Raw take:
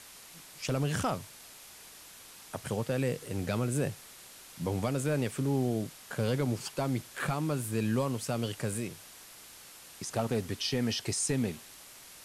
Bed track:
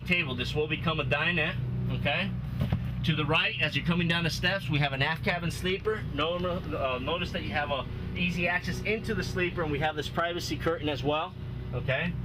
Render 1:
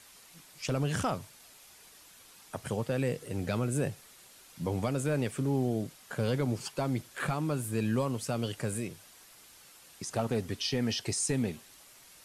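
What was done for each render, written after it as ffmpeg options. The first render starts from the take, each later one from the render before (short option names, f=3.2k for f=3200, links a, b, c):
-af "afftdn=nr=6:nf=-52"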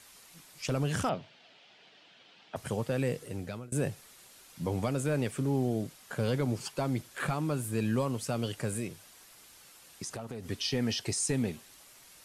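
-filter_complex "[0:a]asettb=1/sr,asplit=3[a][b][c];[a]atrim=end=1.094[d];[b]atrim=start=1.09:end=2.56,asetpts=PTS-STARTPTS,afade=t=in:d=0.004:c=qsin,afade=t=out:st=1.466:d=0.004:c=qsin,highpass=f=130:w=0.5412,highpass=f=130:w=1.3066,equalizer=f=670:t=q:w=4:g=5,equalizer=f=1.1k:t=q:w=4:g=-6,equalizer=f=3k:t=q:w=4:g=6,lowpass=f=4.2k:w=0.5412,lowpass=f=4.2k:w=1.3066[e];[c]atrim=start=2.556[f];[d][e]acrossfade=d=0.004:c1=hsin:c2=qsin[g];[g][f]acrossfade=d=0.004:c1=qsin:c2=hsin,asettb=1/sr,asplit=3[h][i][j];[h]atrim=end=10.074[k];[i]atrim=start=10.07:end=10.5,asetpts=PTS-STARTPTS,afade=t=in:d=0.004:c=qsin,afade=t=out:st=0.426:d=0.004:c=qsin,acompressor=threshold=-36dB:ratio=6:attack=3.2:release=140:knee=1:detection=peak[l];[j]atrim=start=10.496[m];[k][l]acrossfade=d=0.004:c1=hsin:c2=qsin[n];[n][m]acrossfade=d=0.004:c1=qsin:c2=hsin,asplit=2[o][p];[o]atrim=end=3.72,asetpts=PTS-STARTPTS,afade=t=out:st=3.18:d=0.54:silence=0.0630957[q];[p]atrim=start=3.72,asetpts=PTS-STARTPTS,afade=t=in:d=0.004:c=hsin:silence=0.0630957[r];[q][r]concat=n=2:v=0:a=1"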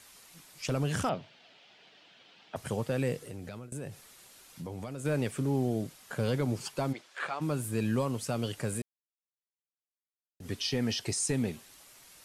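-filter_complex "[0:a]asplit=3[a][b][c];[a]afade=t=out:st=3.26:d=0.02[d];[b]acompressor=threshold=-38dB:ratio=3:attack=3.2:release=140:knee=1:detection=peak,afade=t=in:st=3.26:d=0.02,afade=t=out:st=5.04:d=0.02[e];[c]afade=t=in:st=5.04:d=0.02[f];[d][e][f]amix=inputs=3:normalize=0,asplit=3[g][h][i];[g]afade=t=out:st=6.92:d=0.02[j];[h]highpass=550,lowpass=5.1k,afade=t=in:st=6.92:d=0.02,afade=t=out:st=7.4:d=0.02[k];[i]afade=t=in:st=7.4:d=0.02[l];[j][k][l]amix=inputs=3:normalize=0,asplit=3[m][n][o];[m]atrim=end=8.82,asetpts=PTS-STARTPTS,afade=t=out:st=8.816:d=0.004:c=hsin[p];[n]atrim=start=8.82:end=10.4,asetpts=PTS-STARTPTS,volume=0[q];[o]atrim=start=10.4,asetpts=PTS-STARTPTS,afade=t=in:d=0.004:c=hsin[r];[p][q][r]concat=n=3:v=0:a=1"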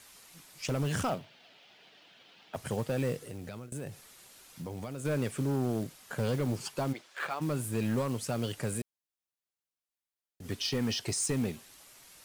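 -af "acrusher=bits=5:mode=log:mix=0:aa=0.000001,asoftclip=type=hard:threshold=-24.5dB"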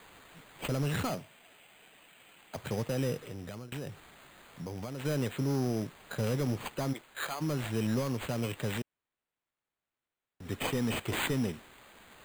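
-filter_complex "[0:a]acrossover=split=510|1300[a][b][c];[b]asoftclip=type=hard:threshold=-39dB[d];[a][d][c]amix=inputs=3:normalize=0,acrusher=samples=8:mix=1:aa=0.000001"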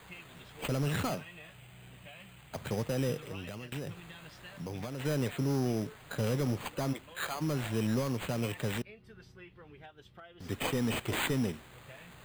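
-filter_complex "[1:a]volume=-23.5dB[a];[0:a][a]amix=inputs=2:normalize=0"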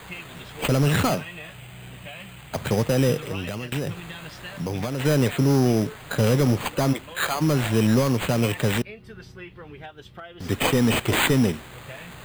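-af "volume=11.5dB"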